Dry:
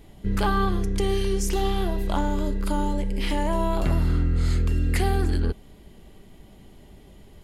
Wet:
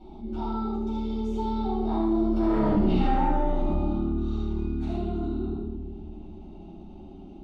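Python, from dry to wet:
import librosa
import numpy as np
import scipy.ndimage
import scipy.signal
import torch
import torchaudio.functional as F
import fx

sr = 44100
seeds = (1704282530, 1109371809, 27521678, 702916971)

y = fx.doppler_pass(x, sr, speed_mps=40, closest_m=5.7, pass_at_s=2.72)
y = fx.highpass(y, sr, hz=130.0, slope=6)
y = fx.low_shelf(y, sr, hz=260.0, db=8.0)
y = fx.fixed_phaser(y, sr, hz=480.0, stages=6)
y = fx.small_body(y, sr, hz=(400.0, 810.0, 3700.0), ring_ms=45, db=11)
y = 10.0 ** (-28.5 / 20.0) * np.tanh(y / 10.0 ** (-28.5 / 20.0))
y = fx.air_absorb(y, sr, metres=230.0)
y = y + 10.0 ** (-3.5 / 20.0) * np.pad(y, (int(76 * sr / 1000.0), 0))[:len(y)]
y = fx.room_shoebox(y, sr, seeds[0], volume_m3=390.0, walls='mixed', distance_m=7.5)
y = fx.env_flatten(y, sr, amount_pct=50)
y = y * librosa.db_to_amplitude(-9.0)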